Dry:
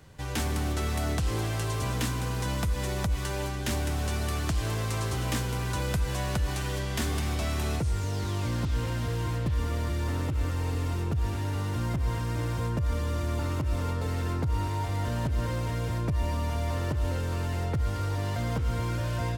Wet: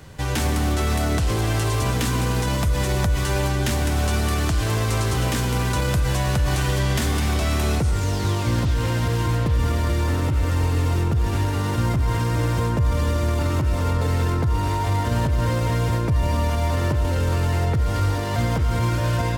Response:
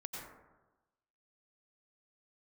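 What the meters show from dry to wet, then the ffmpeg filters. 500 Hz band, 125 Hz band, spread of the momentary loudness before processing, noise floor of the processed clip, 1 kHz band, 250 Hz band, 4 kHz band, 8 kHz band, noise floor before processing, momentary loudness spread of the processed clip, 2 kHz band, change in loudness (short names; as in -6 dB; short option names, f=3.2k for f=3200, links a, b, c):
+8.5 dB, +8.0 dB, 1 LU, -23 dBFS, +8.5 dB, +8.0 dB, +8.0 dB, +7.5 dB, -31 dBFS, 1 LU, +8.0 dB, +8.0 dB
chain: -filter_complex "[0:a]alimiter=limit=-24dB:level=0:latency=1:release=26,asplit=2[a][b];[1:a]atrim=start_sample=2205[c];[b][c]afir=irnorm=-1:irlink=0,volume=-6.5dB[d];[a][d]amix=inputs=2:normalize=0,volume=8dB"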